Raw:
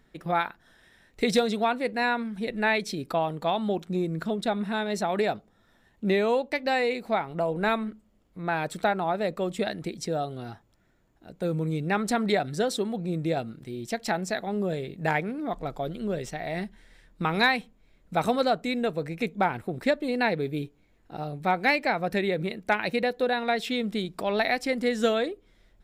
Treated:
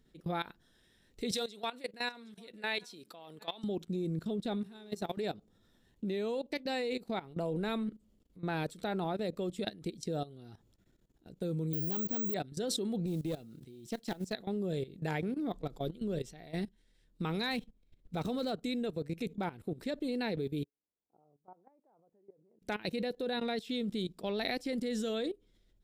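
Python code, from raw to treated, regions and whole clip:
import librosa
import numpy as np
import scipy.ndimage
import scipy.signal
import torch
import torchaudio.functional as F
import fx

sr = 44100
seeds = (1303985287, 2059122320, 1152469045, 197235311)

y = fx.chain(x, sr, fx.highpass(hz=920.0, slope=6),
    fx.echo_single(ms=767, db=-21.5), at=(1.31, 3.64))
y = fx.high_shelf(y, sr, hz=9600.0, db=10.5, at=(4.61, 5.17), fade=0.02)
y = fx.level_steps(y, sr, step_db=9, at=(4.61, 5.17), fade=0.02)
y = fx.dmg_buzz(y, sr, base_hz=400.0, harmonics=38, level_db=-50.0, tilt_db=-9, odd_only=False, at=(4.61, 5.17), fade=0.02)
y = fx.chain(y, sr, fx.median_filter(points=25),
    fx.high_shelf(hz=7400.0, db=-6.0),
    fx.resample_bad(factor=2, down='filtered', up='zero_stuff'), at=(11.73, 12.34))
y = fx.chain(y, sr, fx.highpass(hz=81.0, slope=12),
    fx.tube_stage(drive_db=17.0, bias=0.45),
    fx.mod_noise(seeds[0], snr_db=27), at=(13.06, 14.33))
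y = fx.chain(y, sr, fx.median_filter(points=5),
    fx.low_shelf(hz=81.0, db=7.0), at=(17.51, 18.52))
y = fx.chain(y, sr, fx.steep_lowpass(hz=1000.0, slope=36),
    fx.differentiator(), at=(20.64, 22.62))
y = fx.band_shelf(y, sr, hz=1200.0, db=-8.5, octaves=2.3)
y = fx.level_steps(y, sr, step_db=17)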